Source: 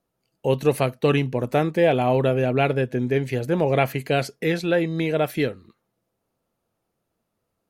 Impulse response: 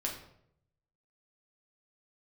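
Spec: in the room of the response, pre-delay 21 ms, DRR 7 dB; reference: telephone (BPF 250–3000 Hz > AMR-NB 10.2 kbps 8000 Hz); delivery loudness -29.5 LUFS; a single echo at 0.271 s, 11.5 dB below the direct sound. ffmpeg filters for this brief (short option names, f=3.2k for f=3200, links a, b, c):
-filter_complex "[0:a]aecho=1:1:271:0.266,asplit=2[a][b];[1:a]atrim=start_sample=2205,adelay=21[c];[b][c]afir=irnorm=-1:irlink=0,volume=-9.5dB[d];[a][d]amix=inputs=2:normalize=0,highpass=250,lowpass=3k,volume=-6.5dB" -ar 8000 -c:a libopencore_amrnb -b:a 10200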